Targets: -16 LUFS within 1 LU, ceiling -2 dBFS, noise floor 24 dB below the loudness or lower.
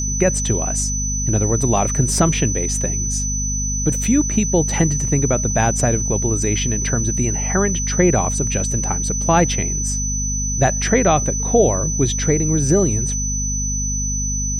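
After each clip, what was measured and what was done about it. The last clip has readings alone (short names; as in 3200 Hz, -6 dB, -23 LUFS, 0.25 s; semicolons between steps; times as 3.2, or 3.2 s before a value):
hum 50 Hz; harmonics up to 250 Hz; hum level -21 dBFS; steady tone 6000 Hz; tone level -22 dBFS; loudness -18.0 LUFS; peak -2.5 dBFS; loudness target -16.0 LUFS
-> notches 50/100/150/200/250 Hz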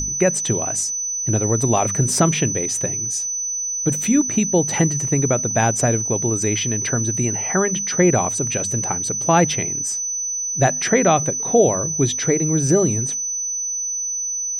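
hum none; steady tone 6000 Hz; tone level -22 dBFS
-> notch 6000 Hz, Q 30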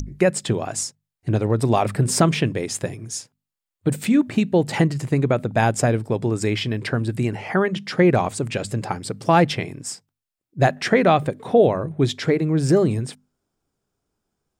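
steady tone none; loudness -21.0 LUFS; peak -4.5 dBFS; loudness target -16.0 LUFS
-> gain +5 dB; limiter -2 dBFS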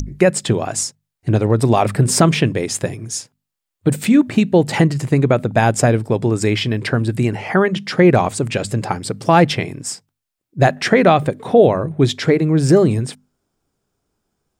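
loudness -16.5 LUFS; peak -2.0 dBFS; noise floor -81 dBFS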